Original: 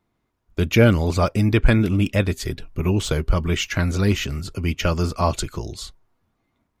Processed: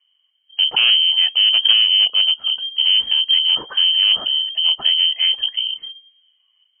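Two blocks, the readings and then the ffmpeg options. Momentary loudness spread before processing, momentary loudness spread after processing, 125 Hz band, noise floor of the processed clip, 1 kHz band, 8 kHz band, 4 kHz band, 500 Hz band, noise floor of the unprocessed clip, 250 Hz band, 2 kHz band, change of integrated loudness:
13 LU, 8 LU, under -35 dB, -65 dBFS, -10.0 dB, under -40 dB, +22.0 dB, under -20 dB, -73 dBFS, under -25 dB, +2.0 dB, +7.5 dB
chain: -af "lowshelf=f=340:t=q:w=1.5:g=12.5,acontrast=77,lowpass=f=2700:t=q:w=0.5098,lowpass=f=2700:t=q:w=0.6013,lowpass=f=2700:t=q:w=0.9,lowpass=f=2700:t=q:w=2.563,afreqshift=-3200,volume=0.299"

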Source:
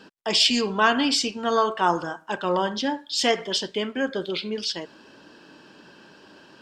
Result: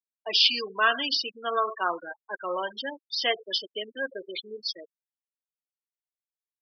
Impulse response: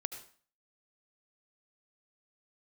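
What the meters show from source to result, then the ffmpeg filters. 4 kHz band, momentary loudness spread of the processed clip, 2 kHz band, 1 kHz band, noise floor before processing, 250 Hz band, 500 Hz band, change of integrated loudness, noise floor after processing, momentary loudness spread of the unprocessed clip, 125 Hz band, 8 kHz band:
-2.0 dB, 15 LU, -1.5 dB, -5.5 dB, -52 dBFS, -15.5 dB, -7.0 dB, -4.0 dB, under -85 dBFS, 10 LU, under -20 dB, -15.0 dB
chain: -af "afftfilt=real='re*gte(hypot(re,im),0.1)':imag='im*gte(hypot(re,im),0.1)':win_size=1024:overlap=0.75,highpass=650,equalizer=f=870:t=o:w=0.32:g=-12.5,aresample=11025,aresample=44100"

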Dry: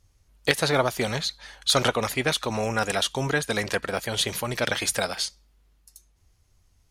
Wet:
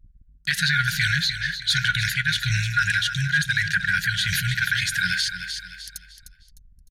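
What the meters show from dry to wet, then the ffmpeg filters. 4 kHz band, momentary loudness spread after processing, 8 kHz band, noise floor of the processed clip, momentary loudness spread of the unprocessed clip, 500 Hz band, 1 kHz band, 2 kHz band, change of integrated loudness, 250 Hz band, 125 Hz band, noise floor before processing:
+3.0 dB, 10 LU, -1.0 dB, -54 dBFS, 6 LU, under -40 dB, -2.5 dB, +9.0 dB, +3.0 dB, -5.5 dB, +6.0 dB, -64 dBFS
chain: -filter_complex "[0:a]afftfilt=real='re*(1-between(b*sr/4096,190,1400))':imag='im*(1-between(b*sr/4096,190,1400))':win_size=4096:overlap=0.75,anlmdn=0.01,equalizer=f=250:t=o:w=0.67:g=8,equalizer=f=630:t=o:w=0.67:g=8,equalizer=f=1600:t=o:w=0.67:g=11,equalizer=f=4000:t=o:w=0.67:g=6,equalizer=f=10000:t=o:w=0.67:g=-4,areverse,acompressor=threshold=0.0447:ratio=12,areverse,alimiter=limit=0.0668:level=0:latency=1:release=59,acontrast=81,asplit=2[s0][s1];[s1]aecho=0:1:304|608|912|1216:0.316|0.104|0.0344|0.0114[s2];[s0][s2]amix=inputs=2:normalize=0,adynamicequalizer=threshold=0.0126:dfrequency=1700:dqfactor=0.7:tfrequency=1700:tqfactor=0.7:attack=5:release=100:ratio=0.375:range=2.5:mode=cutabove:tftype=highshelf,volume=2.24"

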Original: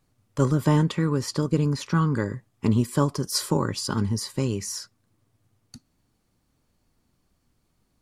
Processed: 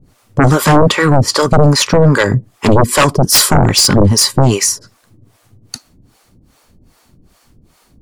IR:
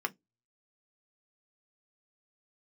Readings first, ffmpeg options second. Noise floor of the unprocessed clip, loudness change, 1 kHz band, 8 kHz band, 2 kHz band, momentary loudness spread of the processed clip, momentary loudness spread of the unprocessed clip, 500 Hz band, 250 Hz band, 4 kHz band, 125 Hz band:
-71 dBFS, +14.5 dB, +17.5 dB, +19.5 dB, +19.5 dB, 6 LU, 7 LU, +16.0 dB, +10.5 dB, +19.0 dB, +12.0 dB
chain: -filter_complex "[0:a]acrossover=split=470[s0][s1];[s0]aeval=exprs='val(0)*(1-1/2+1/2*cos(2*PI*2.5*n/s))':c=same[s2];[s1]aeval=exprs='val(0)*(1-1/2-1/2*cos(2*PI*2.5*n/s))':c=same[s3];[s2][s3]amix=inputs=2:normalize=0,aeval=exprs='0.266*sin(PI/2*4.47*val(0)/0.266)':c=same,volume=2.37"

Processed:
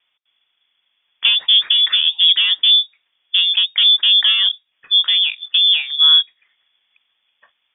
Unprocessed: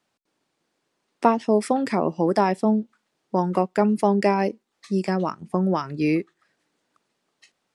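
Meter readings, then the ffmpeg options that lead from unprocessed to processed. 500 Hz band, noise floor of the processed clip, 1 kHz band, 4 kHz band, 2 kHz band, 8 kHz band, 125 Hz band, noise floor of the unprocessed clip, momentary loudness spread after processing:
under -35 dB, -71 dBFS, under -15 dB, +36.0 dB, +11.0 dB, no reading, under -40 dB, -76 dBFS, 7 LU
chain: -filter_complex "[0:a]asplit=2[s0][s1];[s1]highpass=f=720:p=1,volume=7.94,asoftclip=type=tanh:threshold=0.708[s2];[s0][s2]amix=inputs=2:normalize=0,lowpass=f=1100:p=1,volume=0.501,lowshelf=f=440:t=q:w=1.5:g=6.5,lowpass=f=3100:t=q:w=0.5098,lowpass=f=3100:t=q:w=0.6013,lowpass=f=3100:t=q:w=0.9,lowpass=f=3100:t=q:w=2.563,afreqshift=-3700,volume=0.891"

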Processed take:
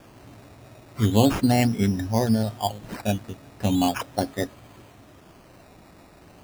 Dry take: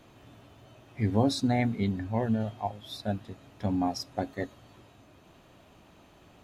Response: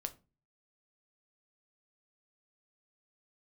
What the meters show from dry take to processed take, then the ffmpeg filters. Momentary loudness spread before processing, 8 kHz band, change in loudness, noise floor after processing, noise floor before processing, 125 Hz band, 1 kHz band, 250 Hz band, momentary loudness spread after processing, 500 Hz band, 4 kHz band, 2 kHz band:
12 LU, +10.5 dB, +6.5 dB, -51 dBFS, -57 dBFS, +6.5 dB, +6.0 dB, +6.5 dB, 12 LU, +6.5 dB, +7.0 dB, +6.5 dB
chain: -af "acrusher=samples=11:mix=1:aa=0.000001:lfo=1:lforange=6.6:lforate=0.38,volume=2.11"

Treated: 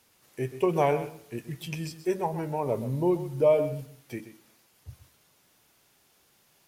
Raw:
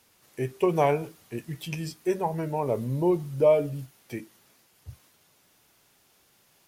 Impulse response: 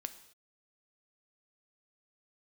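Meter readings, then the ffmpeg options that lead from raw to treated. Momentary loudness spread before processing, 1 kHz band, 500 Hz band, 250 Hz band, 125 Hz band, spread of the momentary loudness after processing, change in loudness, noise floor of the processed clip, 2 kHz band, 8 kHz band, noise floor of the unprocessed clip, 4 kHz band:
18 LU, -1.0 dB, -1.0 dB, -1.5 dB, -1.5 dB, 18 LU, -1.5 dB, -65 dBFS, -1.0 dB, no reading, -64 dBFS, -1.5 dB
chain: -filter_complex "[0:a]asplit=2[s0][s1];[1:a]atrim=start_sample=2205,adelay=128[s2];[s1][s2]afir=irnorm=-1:irlink=0,volume=0.316[s3];[s0][s3]amix=inputs=2:normalize=0,volume=0.841"

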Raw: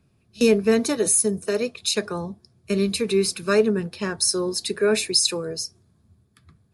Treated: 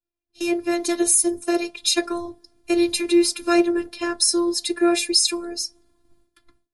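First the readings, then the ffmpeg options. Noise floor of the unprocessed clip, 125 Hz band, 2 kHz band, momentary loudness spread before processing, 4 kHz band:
-64 dBFS, under -15 dB, +0.5 dB, 11 LU, +2.0 dB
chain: -af "dynaudnorm=f=220:g=7:m=5.62,agate=range=0.0224:threshold=0.00316:ratio=3:detection=peak,afftfilt=real='hypot(re,im)*cos(PI*b)':imag='0':win_size=512:overlap=0.75,volume=0.891"

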